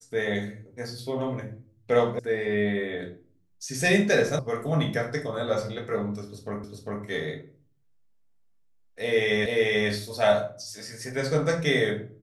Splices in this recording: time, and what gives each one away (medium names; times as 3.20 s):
2.19 s: sound stops dead
4.39 s: sound stops dead
6.64 s: repeat of the last 0.4 s
9.46 s: repeat of the last 0.44 s